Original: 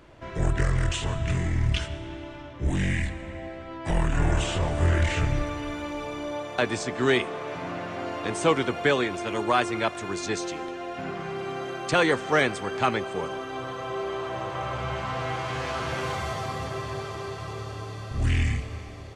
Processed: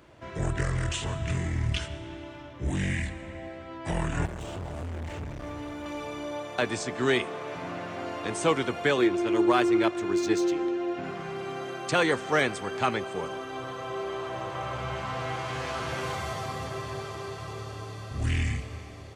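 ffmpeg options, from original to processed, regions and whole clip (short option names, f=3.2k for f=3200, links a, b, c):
-filter_complex "[0:a]asettb=1/sr,asplit=3[a][b][c];[a]atrim=end=4.254[d];[b]atrim=start=4.25:end=5.86,asetpts=PTS-STARTPTS,afade=t=in:d=0.004:c=qsin,afade=t=out:st=1.606:d=0.004:c=qsin,acrossover=split=87|1100[e][f][g];[e]acompressor=threshold=-24dB:ratio=4[h];[f]acompressor=threshold=-29dB:ratio=4[i];[g]acompressor=threshold=-45dB:ratio=4[j];[h][i][j]amix=inputs=3:normalize=0,asoftclip=type=hard:threshold=-30dB[k];[c]atrim=start=5.856[l];[d][k]acrossfade=d=0.004:c1=hsin:c2=qsin[m];[m][l]acrossfade=d=0.004:c1=qsin:c2=hsin,asettb=1/sr,asplit=3[n][o][p];[n]atrim=end=8.974[q];[o]atrim=start=8.97:end=11.04,asetpts=PTS-STARTPTS,afade=t=in:d=0.004:c=qsin,afade=t=out:st=2.066:d=0.004:c=qsin,equalizer=f=340:w=6.9:g=14,adynamicsmooth=sensitivity=4.5:basefreq=6.7k[r];[p]atrim=start=11.036[s];[q][r]acrossfade=d=0.004:c1=hsin:c2=qsin[t];[t][s]acrossfade=d=0.004:c1=qsin:c2=hsin,highpass=58,highshelf=f=8.3k:g=5,volume=-2.5dB"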